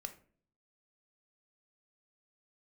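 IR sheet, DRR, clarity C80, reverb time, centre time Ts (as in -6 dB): 6.5 dB, 18.0 dB, 0.50 s, 7 ms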